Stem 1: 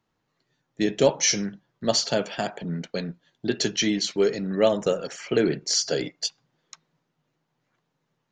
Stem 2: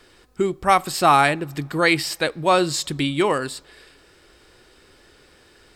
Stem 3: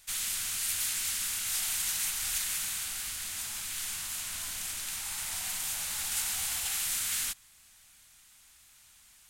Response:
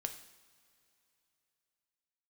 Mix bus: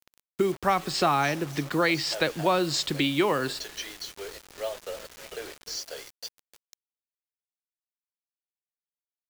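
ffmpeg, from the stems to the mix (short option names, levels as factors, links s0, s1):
-filter_complex "[0:a]highpass=f=510:w=0.5412,highpass=f=510:w=1.3066,acontrast=64,volume=0.141,asplit=2[s0][s1];[s1]volume=0.168[s2];[1:a]volume=1.12[s3];[2:a]acompressor=threshold=0.0126:ratio=2.5,adelay=2250,volume=0.15,asplit=2[s4][s5];[s5]volume=0.266[s6];[s2][s6]amix=inputs=2:normalize=0,aecho=0:1:302|604|906|1208|1510|1812|2114|2416|2718:1|0.57|0.325|0.185|0.106|0.0602|0.0343|0.0195|0.0111[s7];[s0][s3][s4][s7]amix=inputs=4:normalize=0,lowpass=f=6600:w=0.5412,lowpass=f=6600:w=1.3066,acrossover=split=120|270[s8][s9][s10];[s8]acompressor=threshold=0.00398:ratio=4[s11];[s9]acompressor=threshold=0.02:ratio=4[s12];[s10]acompressor=threshold=0.0794:ratio=4[s13];[s11][s12][s13]amix=inputs=3:normalize=0,acrusher=bits=6:mix=0:aa=0.000001"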